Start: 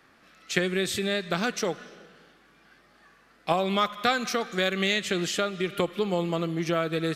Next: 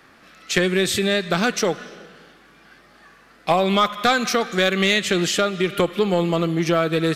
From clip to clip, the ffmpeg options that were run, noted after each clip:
-af "asoftclip=type=tanh:threshold=0.188,volume=2.51"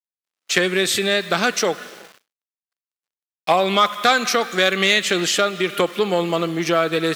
-af "aeval=exprs='val(0)*gte(abs(val(0)),0.00944)':c=same,agate=range=0.0224:threshold=0.00398:ratio=16:detection=peak,highpass=f=400:p=1,volume=1.41"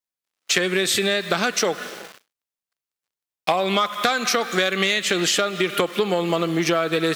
-af "acompressor=threshold=0.0891:ratio=6,volume=1.58"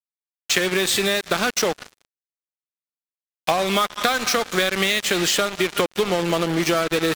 -af "acrusher=bits=3:mix=0:aa=0.5"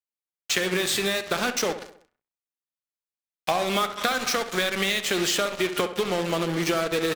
-filter_complex "[0:a]flanger=delay=4.2:depth=9.8:regen=82:speed=0.43:shape=sinusoidal,asplit=2[s0][s1];[s1]adelay=66,lowpass=f=2800:p=1,volume=0.282,asplit=2[s2][s3];[s3]adelay=66,lowpass=f=2800:p=1,volume=0.5,asplit=2[s4][s5];[s5]adelay=66,lowpass=f=2800:p=1,volume=0.5,asplit=2[s6][s7];[s7]adelay=66,lowpass=f=2800:p=1,volume=0.5,asplit=2[s8][s9];[s9]adelay=66,lowpass=f=2800:p=1,volume=0.5[s10];[s0][s2][s4][s6][s8][s10]amix=inputs=6:normalize=0"

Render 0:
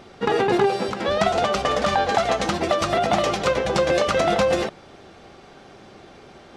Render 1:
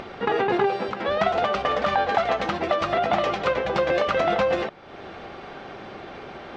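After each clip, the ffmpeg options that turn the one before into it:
-af "lowpass=2900,lowshelf=f=400:g=-6.5,acompressor=mode=upward:threshold=0.0398:ratio=2.5"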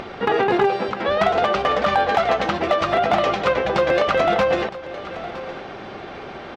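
-af "volume=4.73,asoftclip=hard,volume=0.211,aecho=1:1:963:0.168,volume=1.58"

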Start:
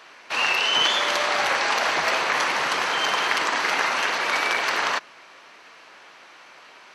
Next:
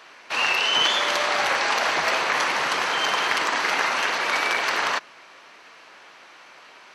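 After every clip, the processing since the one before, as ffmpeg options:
-af "asoftclip=type=hard:threshold=0.316"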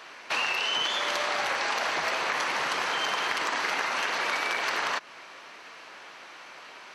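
-af "acompressor=threshold=0.0447:ratio=6,volume=1.19"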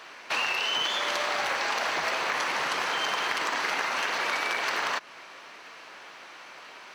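-af "acrusher=bits=8:mode=log:mix=0:aa=0.000001"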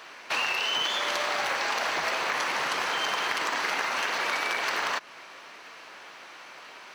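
-af "highshelf=f=11000:g=3.5"

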